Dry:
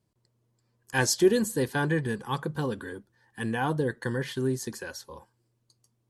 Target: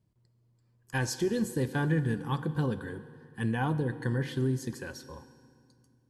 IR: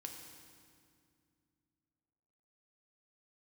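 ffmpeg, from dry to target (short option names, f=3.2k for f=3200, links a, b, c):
-filter_complex "[0:a]bass=f=250:g=10,treble=f=4k:g=-4,alimiter=limit=-15.5dB:level=0:latency=1:release=300,asplit=2[a][b];[1:a]atrim=start_sample=2205,lowshelf=f=220:g=-9.5[c];[b][c]afir=irnorm=-1:irlink=0,volume=-0.5dB[d];[a][d]amix=inputs=2:normalize=0,volume=-6.5dB"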